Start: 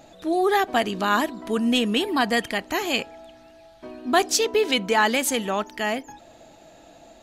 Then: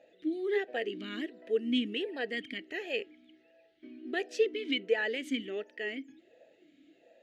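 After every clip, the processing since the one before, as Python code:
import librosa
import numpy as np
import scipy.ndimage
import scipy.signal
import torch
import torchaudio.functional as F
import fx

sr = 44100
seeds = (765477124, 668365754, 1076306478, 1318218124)

y = fx.vowel_sweep(x, sr, vowels='e-i', hz=1.4)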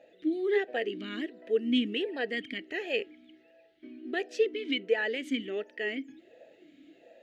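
y = fx.high_shelf(x, sr, hz=5700.0, db=-5.0)
y = fx.rider(y, sr, range_db=10, speed_s=2.0)
y = F.gain(torch.from_numpy(y), 1.5).numpy()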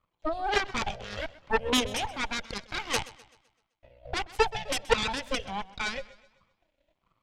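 y = fx.cheby_harmonics(x, sr, harmonics=(2, 3, 7, 8), levels_db=(-10, -10, -40, -13), full_scale_db=-15.0)
y = fx.echo_warbled(y, sr, ms=128, feedback_pct=44, rate_hz=2.8, cents=73, wet_db=-19)
y = F.gain(torch.from_numpy(y), 4.0).numpy()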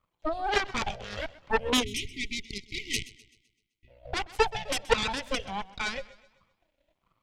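y = fx.spec_erase(x, sr, start_s=1.83, length_s=2.05, low_hz=450.0, high_hz=1900.0)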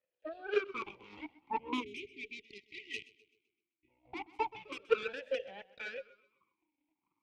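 y = fx.vowel_sweep(x, sr, vowels='e-u', hz=0.36)
y = F.gain(torch.from_numpy(y), 3.0).numpy()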